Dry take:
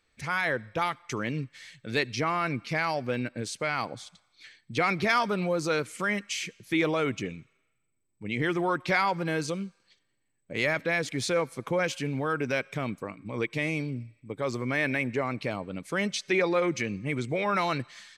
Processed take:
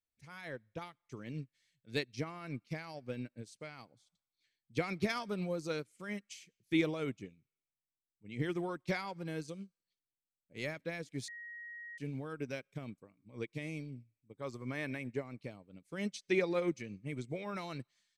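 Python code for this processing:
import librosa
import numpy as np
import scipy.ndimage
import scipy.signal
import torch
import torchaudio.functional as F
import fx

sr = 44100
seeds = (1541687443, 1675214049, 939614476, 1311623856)

y = fx.high_shelf(x, sr, hz=10000.0, db=-7.5, at=(0.48, 1.16))
y = fx.peak_eq(y, sr, hz=1100.0, db=5.5, octaves=0.77, at=(14.33, 14.99))
y = fx.edit(y, sr, fx.bleep(start_s=11.28, length_s=0.7, hz=1890.0, db=-24.0), tone=tone)
y = fx.peak_eq(y, sr, hz=1300.0, db=-9.0, octaves=2.7)
y = fx.upward_expand(y, sr, threshold_db=-42.0, expansion=2.5)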